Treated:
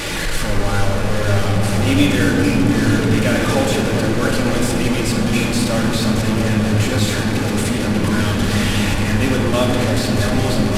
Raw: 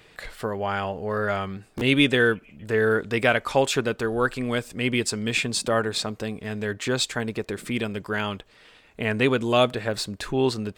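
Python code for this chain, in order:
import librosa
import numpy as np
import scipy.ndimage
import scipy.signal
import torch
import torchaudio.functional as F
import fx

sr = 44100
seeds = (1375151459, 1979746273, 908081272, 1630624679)

p1 = fx.delta_mod(x, sr, bps=64000, step_db=-16.5)
p2 = fx.low_shelf(p1, sr, hz=340.0, db=4.0)
p3 = p2 + fx.echo_opening(p2, sr, ms=228, hz=200, octaves=1, feedback_pct=70, wet_db=0, dry=0)
p4 = fx.room_shoebox(p3, sr, seeds[0], volume_m3=2400.0, walls='mixed', distance_m=2.4)
y = F.gain(torch.from_numpy(p4), -4.0).numpy()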